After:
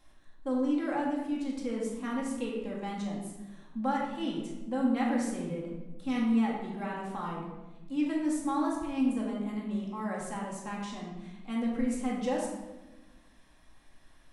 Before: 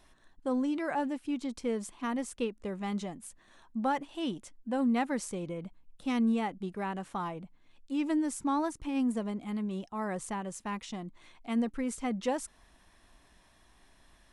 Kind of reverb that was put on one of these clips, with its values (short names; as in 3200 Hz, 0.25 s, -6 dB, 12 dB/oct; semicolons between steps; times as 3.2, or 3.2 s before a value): shoebox room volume 680 m³, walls mixed, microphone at 2.2 m; gain -5.5 dB